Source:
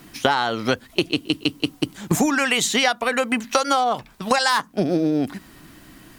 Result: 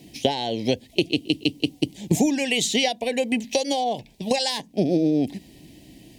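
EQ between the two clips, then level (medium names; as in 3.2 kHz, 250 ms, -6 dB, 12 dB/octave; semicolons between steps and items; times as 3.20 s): high-pass 42 Hz; Butterworth band-stop 1.3 kHz, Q 0.76; treble shelf 9.7 kHz -9 dB; 0.0 dB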